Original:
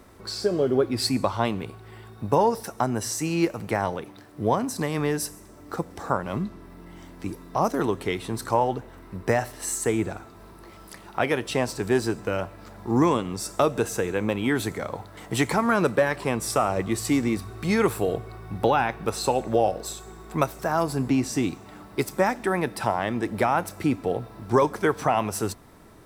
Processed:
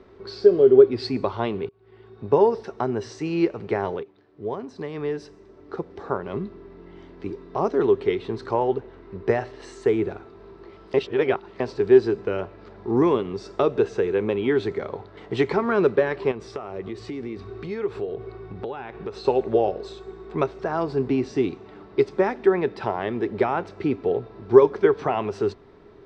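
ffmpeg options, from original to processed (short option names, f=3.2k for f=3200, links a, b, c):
-filter_complex "[0:a]asettb=1/sr,asplit=3[a][b][c];[a]atrim=end=16.314[d];[b]atrim=start=16.31:end=19.25,asetpts=PTS-STARTPTS,afade=t=in:d=0.004:c=qsin,afade=t=out:st=2.936:d=0.004:c=qsin,acompressor=threshold=-29dB:ratio=6:attack=3.2:release=140:knee=1:detection=peak[e];[c]atrim=start=19.246[f];[d][e]acrossfade=d=0.004:c1=hsin:c2=qsin[g];[g][f]acrossfade=d=0.004:c1=qsin:c2=hsin,asplit=5[h][i][j][k][l];[h]atrim=end=1.69,asetpts=PTS-STARTPTS,afade=t=out:st=1.686:d=0.004:c=hsin[m];[i]atrim=start=1.69:end=4.03,asetpts=PTS-STARTPTS,afade=t=in:d=0.65,afade=t=out:st=2.336:d=0.004:c=hsin:silence=0.223872[n];[j]atrim=start=4.03:end=10.942,asetpts=PTS-STARTPTS,afade=t=in:d=3.5:c=qsin:silence=0.223872[o];[k]atrim=start=10.938:end=11.602,asetpts=PTS-STARTPTS,areverse[p];[l]atrim=start=11.598[q];[m][n][o]concat=n=3:v=0:a=1[r];[r][p]acrossfade=d=0.004:c1=hsin:c2=hsin[s];[s][q]acrossfade=d=0.004:c1=hsin:c2=hsin,lowpass=f=4.4k:w=0.5412,lowpass=f=4.4k:w=1.3066,equalizer=f=400:t=o:w=0.32:g=15,volume=-3dB"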